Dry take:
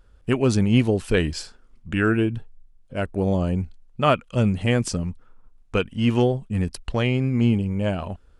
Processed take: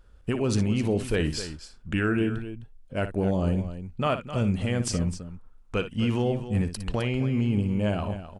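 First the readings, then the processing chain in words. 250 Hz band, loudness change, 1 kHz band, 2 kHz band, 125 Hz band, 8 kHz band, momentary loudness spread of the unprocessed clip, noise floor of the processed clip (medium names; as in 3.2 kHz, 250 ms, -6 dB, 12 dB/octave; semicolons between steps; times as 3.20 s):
-4.0 dB, -4.5 dB, -5.5 dB, -5.0 dB, -4.0 dB, -1.0 dB, 10 LU, -51 dBFS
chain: peak limiter -15.5 dBFS, peak gain reduction 10 dB; loudspeakers at several distances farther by 20 m -11 dB, 89 m -12 dB; trim -1 dB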